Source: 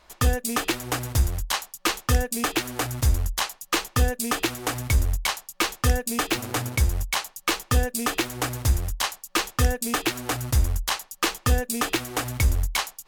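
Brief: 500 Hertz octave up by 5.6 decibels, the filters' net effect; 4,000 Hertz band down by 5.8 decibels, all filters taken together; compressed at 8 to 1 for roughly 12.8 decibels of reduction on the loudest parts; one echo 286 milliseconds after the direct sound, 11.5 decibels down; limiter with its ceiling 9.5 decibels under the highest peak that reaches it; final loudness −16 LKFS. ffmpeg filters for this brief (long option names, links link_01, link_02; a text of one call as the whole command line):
ffmpeg -i in.wav -af "equalizer=frequency=500:width_type=o:gain=6.5,equalizer=frequency=4000:width_type=o:gain=-8,acompressor=threshold=-28dB:ratio=8,alimiter=limit=-22dB:level=0:latency=1,aecho=1:1:286:0.266,volume=19dB" out.wav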